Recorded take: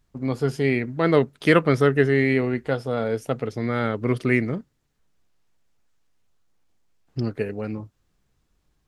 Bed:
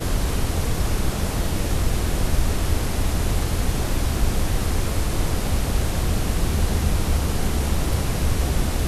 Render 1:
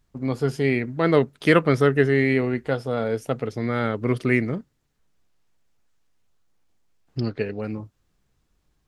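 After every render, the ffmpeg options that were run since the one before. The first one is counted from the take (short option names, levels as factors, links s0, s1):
-filter_complex "[0:a]asettb=1/sr,asplit=3[s0][s1][s2];[s0]atrim=end=7.194[s3];[s1]atrim=start=7.19:end=7.61,asetpts=PTS-STARTPTS,afade=t=in:d=0.004:c=qsin,afade=t=out:st=0.416:d=0.004:c=qsin,lowpass=f=4400:t=q:w=2.1[s4];[s2]atrim=start=7.606[s5];[s3][s4]acrossfade=d=0.004:c1=hsin:c2=qsin[s6];[s6][s5]acrossfade=d=0.004:c1=qsin:c2=hsin"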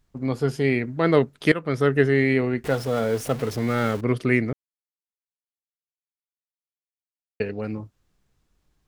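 -filter_complex "[0:a]asettb=1/sr,asplit=3[s0][s1][s2];[s0]atrim=end=2.644[s3];[s1]atrim=start=2.64:end=4.01,asetpts=PTS-STARTPTS,afade=t=in:d=0.004:c=qsin,afade=t=out:st=1.366:d=0.004:c=qsin,aeval=exprs='val(0)+0.5*0.0266*sgn(val(0))':c=same[s4];[s2]atrim=start=4.006[s5];[s3][s4]acrossfade=d=0.004:c1=hsin:c2=qsin[s6];[s6][s5]acrossfade=d=0.004:c1=qsin:c2=hsin,asplit=4[s7][s8][s9][s10];[s7]atrim=end=1.52,asetpts=PTS-STARTPTS,afade=t=out:st=1.516:d=0.004:c=hsin:silence=0.125893[s11];[s8]atrim=start=1.52:end=4.53,asetpts=PTS-STARTPTS,afade=t=in:d=0.43:silence=0.125893,afade=t=out:st=3.006:d=0.004:c=hsin[s12];[s9]atrim=start=4.53:end=7.4,asetpts=PTS-STARTPTS,volume=0[s13];[s10]atrim=start=7.4,asetpts=PTS-STARTPTS,afade=t=in:d=0.004:c=hsin[s14];[s11][s12][s13][s14]concat=n=4:v=0:a=1"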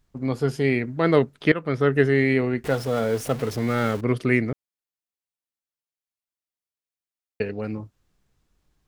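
-filter_complex "[0:a]asettb=1/sr,asplit=3[s0][s1][s2];[s0]atrim=end=1.234[s3];[s1]atrim=start=1.23:end=1.93,asetpts=PTS-STARTPTS,afade=t=in:d=0.004:c=qsin,afade=t=out:st=0.696:d=0.004:c=qsin,acrossover=split=4300[s4][s5];[s5]acompressor=threshold=0.00141:ratio=4:attack=1:release=60[s6];[s4][s6]amix=inputs=2:normalize=0[s7];[s2]atrim=start=1.926[s8];[s3][s7]acrossfade=d=0.004:c1=hsin:c2=qsin[s9];[s9][s8]acrossfade=d=0.004:c1=qsin:c2=hsin"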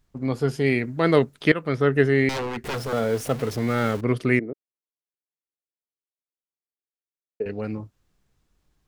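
-filter_complex "[0:a]asettb=1/sr,asplit=3[s0][s1][s2];[s0]atrim=end=0.664[s3];[s1]atrim=start=0.66:end=1.76,asetpts=PTS-STARTPTS,afade=t=in:d=0.004:c=qsin,afade=t=out:st=1.096:d=0.004:c=qsin,highshelf=f=4900:g=8[s4];[s2]atrim=start=1.756[s5];[s3][s4]acrossfade=d=0.004:c1=hsin:c2=qsin[s6];[s6][s5]acrossfade=d=0.004:c1=qsin:c2=hsin,asettb=1/sr,asplit=3[s7][s8][s9];[s7]atrim=end=2.294[s10];[s8]atrim=start=2.29:end=2.93,asetpts=PTS-STARTPTS,afade=t=in:d=0.004:c=qsin,afade=t=out:st=0.636:d=0.004:c=qsin,aeval=exprs='0.0708*(abs(mod(val(0)/0.0708+3,4)-2)-1)':c=same[s11];[s9]atrim=start=2.926[s12];[s10][s11]acrossfade=d=0.004:c1=hsin:c2=qsin[s13];[s13][s12]acrossfade=d=0.004:c1=qsin:c2=hsin,asettb=1/sr,asplit=3[s14][s15][s16];[s14]atrim=end=4.394[s17];[s15]atrim=start=4.39:end=7.46,asetpts=PTS-STARTPTS,afade=t=in:d=0.004:c=qsin,afade=t=out:st=3.066:d=0.004:c=qsin,bandpass=f=390:t=q:w=2[s18];[s16]atrim=start=7.456[s19];[s17][s18]acrossfade=d=0.004:c1=hsin:c2=qsin[s20];[s20][s19]acrossfade=d=0.004:c1=qsin:c2=hsin"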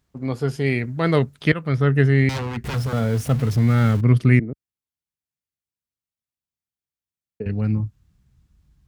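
-af "highpass=61,asubboost=boost=9:cutoff=150"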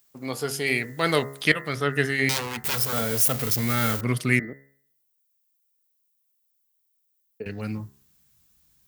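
-af "aemphasis=mode=production:type=riaa,bandreject=f=68.59:t=h:w=4,bandreject=f=137.18:t=h:w=4,bandreject=f=205.77:t=h:w=4,bandreject=f=274.36:t=h:w=4,bandreject=f=342.95:t=h:w=4,bandreject=f=411.54:t=h:w=4,bandreject=f=480.13:t=h:w=4,bandreject=f=548.72:t=h:w=4,bandreject=f=617.31:t=h:w=4,bandreject=f=685.9:t=h:w=4,bandreject=f=754.49:t=h:w=4,bandreject=f=823.08:t=h:w=4,bandreject=f=891.67:t=h:w=4,bandreject=f=960.26:t=h:w=4,bandreject=f=1028.85:t=h:w=4,bandreject=f=1097.44:t=h:w=4,bandreject=f=1166.03:t=h:w=4,bandreject=f=1234.62:t=h:w=4,bandreject=f=1303.21:t=h:w=4,bandreject=f=1371.8:t=h:w=4,bandreject=f=1440.39:t=h:w=4,bandreject=f=1508.98:t=h:w=4,bandreject=f=1577.57:t=h:w=4,bandreject=f=1646.16:t=h:w=4,bandreject=f=1714.75:t=h:w=4,bandreject=f=1783.34:t=h:w=4,bandreject=f=1851.93:t=h:w=4,bandreject=f=1920.52:t=h:w=4,bandreject=f=1989.11:t=h:w=4,bandreject=f=2057.7:t=h:w=4"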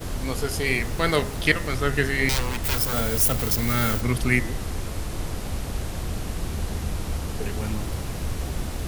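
-filter_complex "[1:a]volume=0.422[s0];[0:a][s0]amix=inputs=2:normalize=0"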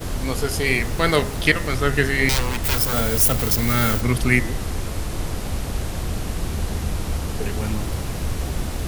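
-af "volume=1.5,alimiter=limit=0.794:level=0:latency=1"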